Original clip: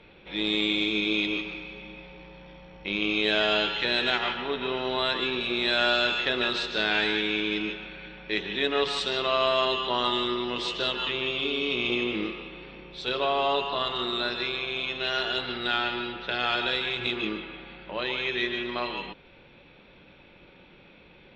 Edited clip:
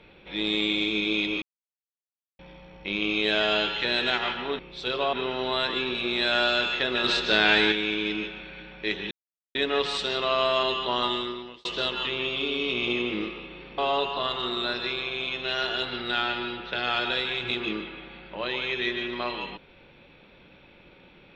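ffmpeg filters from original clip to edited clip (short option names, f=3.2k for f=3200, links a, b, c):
-filter_complex "[0:a]asplit=10[a][b][c][d][e][f][g][h][i][j];[a]atrim=end=1.42,asetpts=PTS-STARTPTS,afade=t=out:st=1.416:d=0.004:c=hsin[k];[b]atrim=start=1.42:end=2.39,asetpts=PTS-STARTPTS,volume=0[l];[c]atrim=start=2.39:end=4.592,asetpts=PTS-STARTPTS,afade=t=in:d=0.004:c=hsin[m];[d]atrim=start=12.798:end=13.342[n];[e]atrim=start=4.588:end=6.502[o];[f]atrim=start=6.498:end=7.182,asetpts=PTS-STARTPTS,volume=5dB[p];[g]atrim=start=7.178:end=8.57,asetpts=PTS-STARTPTS,afade=t=out:st=1.388:d=0.004:c=hsin,apad=pad_dur=0.44[q];[h]atrim=start=8.57:end=10.67,asetpts=PTS-STARTPTS,afade=t=in:d=0.004:c=hsin,afade=t=out:st=1.5:d=0.6[r];[i]atrim=start=10.67:end=12.802,asetpts=PTS-STARTPTS,afade=t=in:d=0.004:c=hsin[s];[j]atrim=start=13.338[t];[k][l][m]concat=n=3:v=0:a=1[u];[u][n]acrossfade=d=0.004:c1=hsin:c2=hsin[v];[v][o]acrossfade=d=0.004:c1=hsin:c2=hsin[w];[w][p]acrossfade=d=0.004:c1=hsin:c2=hsin[x];[q][r][s]concat=n=3:v=0:a=1[y];[x][y]acrossfade=d=0.004:c1=hsin:c2=hsin[z];[z][t]acrossfade=d=0.004:c1=hsin:c2=hsin"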